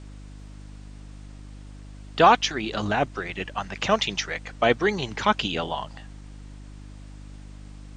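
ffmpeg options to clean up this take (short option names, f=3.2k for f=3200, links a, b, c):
-af "bandreject=f=50.3:t=h:w=4,bandreject=f=100.6:t=h:w=4,bandreject=f=150.9:t=h:w=4,bandreject=f=201.2:t=h:w=4,bandreject=f=251.5:t=h:w=4,bandreject=f=301.8:t=h:w=4,agate=range=-21dB:threshold=-34dB"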